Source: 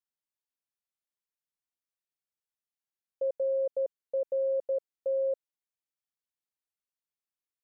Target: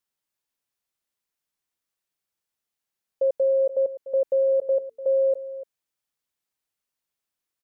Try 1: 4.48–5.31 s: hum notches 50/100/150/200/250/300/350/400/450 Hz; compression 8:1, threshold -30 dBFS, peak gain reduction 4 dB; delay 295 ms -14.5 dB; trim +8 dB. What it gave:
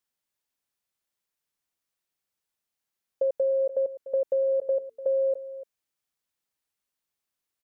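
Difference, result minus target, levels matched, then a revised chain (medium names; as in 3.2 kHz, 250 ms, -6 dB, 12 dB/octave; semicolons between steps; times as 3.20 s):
compression: peak gain reduction +4 dB
4.48–5.31 s: hum notches 50/100/150/200/250/300/350/400/450 Hz; delay 295 ms -14.5 dB; trim +8 dB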